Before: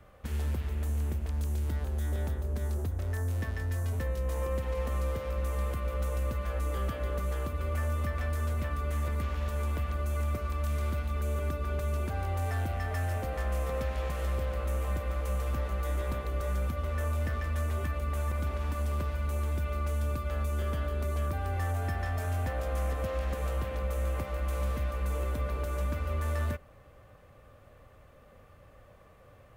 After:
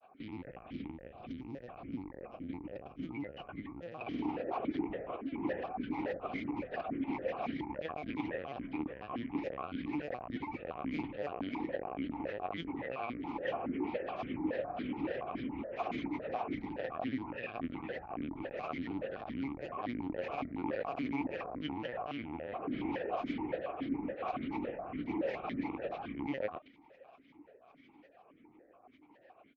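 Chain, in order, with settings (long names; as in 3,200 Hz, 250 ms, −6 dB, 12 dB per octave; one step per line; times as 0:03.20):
linear-prediction vocoder at 8 kHz pitch kept
granular cloud 100 ms, grains 20 per second, pitch spread up and down by 12 semitones
formant filter that steps through the vowels 7.1 Hz
level +8 dB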